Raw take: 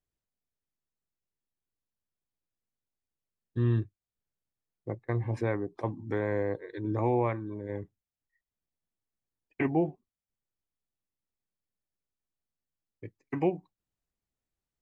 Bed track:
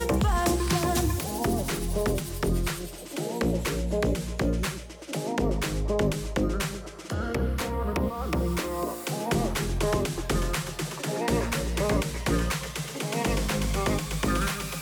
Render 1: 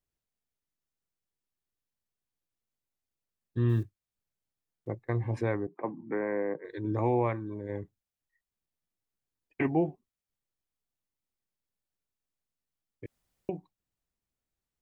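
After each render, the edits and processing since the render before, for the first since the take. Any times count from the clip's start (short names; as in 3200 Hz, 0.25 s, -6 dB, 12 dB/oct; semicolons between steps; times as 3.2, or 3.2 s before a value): 3.69–4.88 block floating point 7-bit; 5.67–6.65 Chebyshev band-pass 150–2300 Hz, order 4; 13.06–13.49 room tone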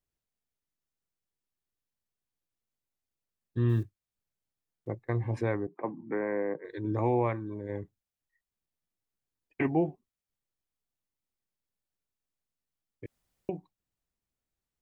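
nothing audible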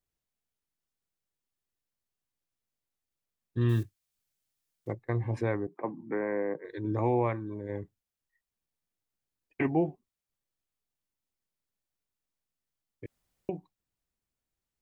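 3.61–4.93 high shelf 2100 Hz +9.5 dB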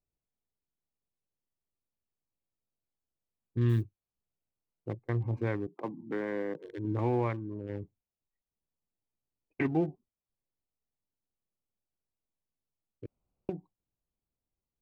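Wiener smoothing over 25 samples; dynamic EQ 640 Hz, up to -5 dB, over -43 dBFS, Q 1.1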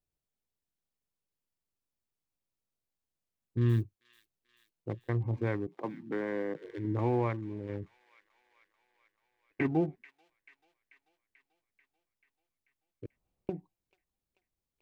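thin delay 0.438 s, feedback 65%, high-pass 2500 Hz, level -11.5 dB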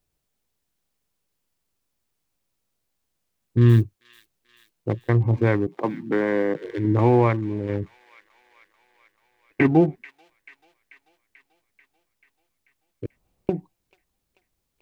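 gain +12 dB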